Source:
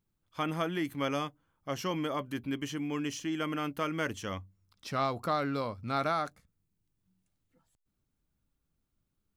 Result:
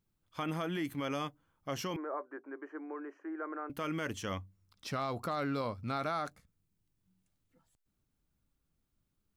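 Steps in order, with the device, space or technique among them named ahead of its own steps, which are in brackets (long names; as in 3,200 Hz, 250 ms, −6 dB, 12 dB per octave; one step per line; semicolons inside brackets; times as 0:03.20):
clipper into limiter (hard clipping −20 dBFS, distortion −41 dB; brickwall limiter −26.5 dBFS, peak gain reduction 6.5 dB)
0:01.96–0:03.70: elliptic band-pass filter 350–1,600 Hz, stop band 40 dB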